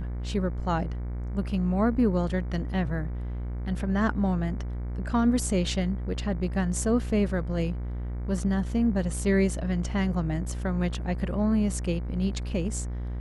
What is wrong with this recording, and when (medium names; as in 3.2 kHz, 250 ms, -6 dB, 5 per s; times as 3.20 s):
buzz 60 Hz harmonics 39 -32 dBFS